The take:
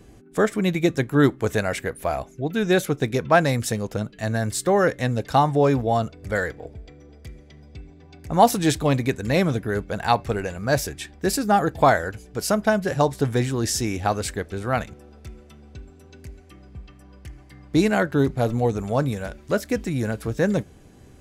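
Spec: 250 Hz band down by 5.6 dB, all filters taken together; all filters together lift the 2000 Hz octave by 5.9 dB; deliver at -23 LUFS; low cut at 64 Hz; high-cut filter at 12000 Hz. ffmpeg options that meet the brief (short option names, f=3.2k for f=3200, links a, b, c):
-af "highpass=64,lowpass=12k,equalizer=f=250:t=o:g=-8,equalizer=f=2k:t=o:g=8"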